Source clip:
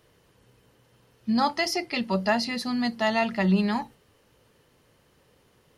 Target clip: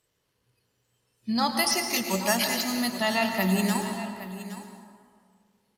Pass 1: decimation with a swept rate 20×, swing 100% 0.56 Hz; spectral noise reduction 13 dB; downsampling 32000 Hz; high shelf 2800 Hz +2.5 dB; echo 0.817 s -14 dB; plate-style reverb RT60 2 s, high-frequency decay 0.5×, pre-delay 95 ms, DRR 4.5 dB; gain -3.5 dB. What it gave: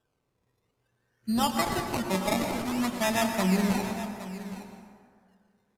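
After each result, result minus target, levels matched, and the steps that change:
decimation with a swept rate: distortion +10 dB; 4000 Hz band -4.0 dB
change: decimation with a swept rate 4×, swing 100% 0.56 Hz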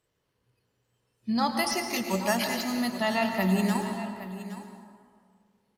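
4000 Hz band -3.0 dB
change: high shelf 2800 Hz +10 dB

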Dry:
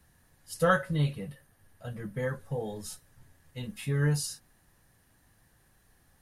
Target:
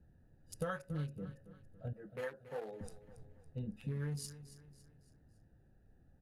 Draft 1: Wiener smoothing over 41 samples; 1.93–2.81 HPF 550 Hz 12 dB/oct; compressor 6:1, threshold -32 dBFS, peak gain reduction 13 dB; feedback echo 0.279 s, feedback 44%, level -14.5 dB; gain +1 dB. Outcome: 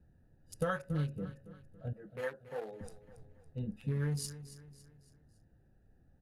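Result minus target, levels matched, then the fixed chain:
compressor: peak gain reduction -5.5 dB
Wiener smoothing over 41 samples; 1.93–2.81 HPF 550 Hz 12 dB/oct; compressor 6:1, threshold -38.5 dBFS, peak gain reduction 18.5 dB; feedback echo 0.279 s, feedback 44%, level -14.5 dB; gain +1 dB

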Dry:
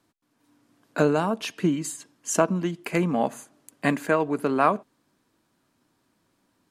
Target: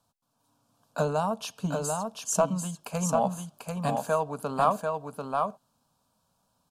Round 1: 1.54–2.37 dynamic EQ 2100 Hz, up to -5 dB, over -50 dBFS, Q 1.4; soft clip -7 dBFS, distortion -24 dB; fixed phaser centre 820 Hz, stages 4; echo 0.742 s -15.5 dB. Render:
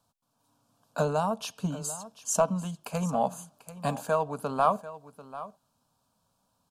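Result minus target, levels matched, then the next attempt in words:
echo-to-direct -11.5 dB
1.54–2.37 dynamic EQ 2100 Hz, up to -5 dB, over -50 dBFS, Q 1.4; soft clip -7 dBFS, distortion -24 dB; fixed phaser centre 820 Hz, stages 4; echo 0.742 s -4 dB

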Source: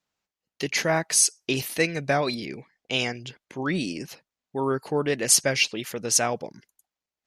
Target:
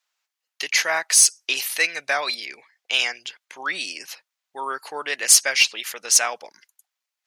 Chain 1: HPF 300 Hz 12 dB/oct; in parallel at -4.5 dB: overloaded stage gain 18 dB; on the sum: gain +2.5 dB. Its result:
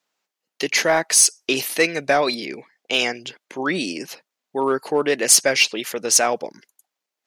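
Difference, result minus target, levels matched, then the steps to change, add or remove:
250 Hz band +18.5 dB
change: HPF 1100 Hz 12 dB/oct

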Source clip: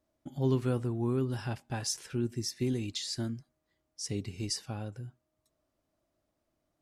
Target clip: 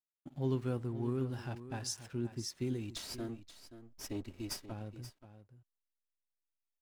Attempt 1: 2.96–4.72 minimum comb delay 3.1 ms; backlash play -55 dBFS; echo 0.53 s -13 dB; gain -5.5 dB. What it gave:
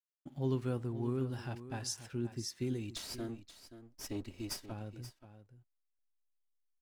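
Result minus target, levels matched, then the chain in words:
backlash: distortion -7 dB
2.96–4.72 minimum comb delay 3.1 ms; backlash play -48 dBFS; echo 0.53 s -13 dB; gain -5.5 dB

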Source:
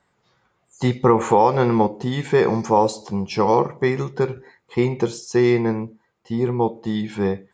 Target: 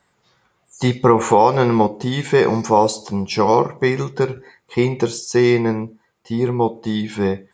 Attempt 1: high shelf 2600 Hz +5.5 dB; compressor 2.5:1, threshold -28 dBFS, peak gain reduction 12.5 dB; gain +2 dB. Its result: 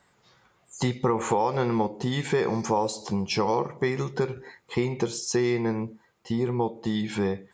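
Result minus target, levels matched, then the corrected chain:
compressor: peak gain reduction +12.5 dB
high shelf 2600 Hz +5.5 dB; gain +2 dB

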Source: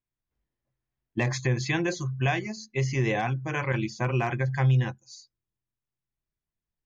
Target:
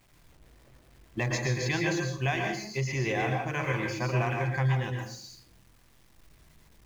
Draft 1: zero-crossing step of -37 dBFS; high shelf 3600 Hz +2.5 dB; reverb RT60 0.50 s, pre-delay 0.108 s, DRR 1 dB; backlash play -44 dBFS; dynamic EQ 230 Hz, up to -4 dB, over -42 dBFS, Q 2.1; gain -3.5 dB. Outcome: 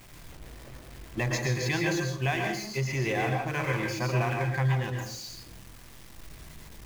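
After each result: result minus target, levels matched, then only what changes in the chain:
zero-crossing step: distortion +11 dB; backlash: distortion +9 dB
change: zero-crossing step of -48.5 dBFS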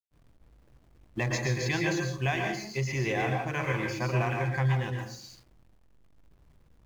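backlash: distortion +8 dB
change: backlash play -53.5 dBFS

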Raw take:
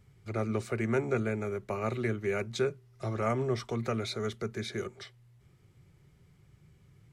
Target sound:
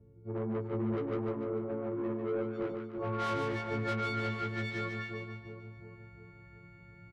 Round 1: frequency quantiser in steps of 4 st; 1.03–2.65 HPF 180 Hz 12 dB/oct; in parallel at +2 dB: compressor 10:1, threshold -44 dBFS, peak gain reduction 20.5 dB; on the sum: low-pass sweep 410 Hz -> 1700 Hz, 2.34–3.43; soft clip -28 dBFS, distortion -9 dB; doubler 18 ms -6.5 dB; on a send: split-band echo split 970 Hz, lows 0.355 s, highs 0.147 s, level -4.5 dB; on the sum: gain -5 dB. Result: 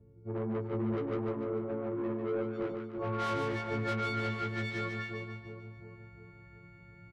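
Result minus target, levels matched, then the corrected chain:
compressor: peak gain reduction -6.5 dB
frequency quantiser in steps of 4 st; 1.03–2.65 HPF 180 Hz 12 dB/oct; in parallel at +2 dB: compressor 10:1, threshold -51 dBFS, peak gain reduction 27 dB; on the sum: low-pass sweep 410 Hz -> 1700 Hz, 2.34–3.43; soft clip -28 dBFS, distortion -9 dB; doubler 18 ms -6.5 dB; on a send: split-band echo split 970 Hz, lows 0.355 s, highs 0.147 s, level -4.5 dB; on the sum: gain -5 dB

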